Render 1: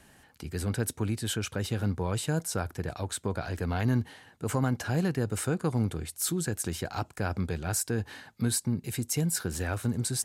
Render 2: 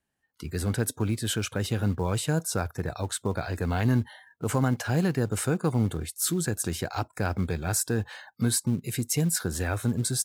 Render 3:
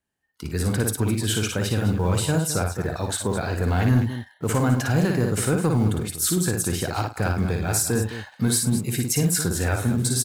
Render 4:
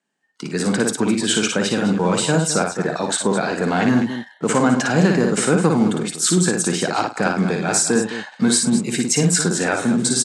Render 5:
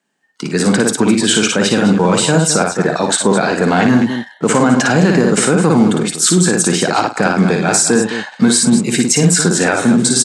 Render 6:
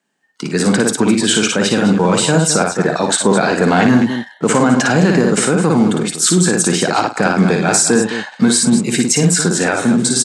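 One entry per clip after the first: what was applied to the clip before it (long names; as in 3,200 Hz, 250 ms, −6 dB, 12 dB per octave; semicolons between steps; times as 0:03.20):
noise reduction from a noise print of the clip's start 28 dB; in parallel at −8 dB: floating-point word with a short mantissa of 2 bits
multi-tap delay 56/101/211 ms −4.5/−15.5/−12 dB; leveller curve on the samples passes 1
elliptic band-pass filter 180–8,100 Hz, stop band 40 dB; level +7.5 dB
brickwall limiter −9 dBFS, peak gain reduction 5 dB; level +7 dB
speech leveller 2 s; level −1 dB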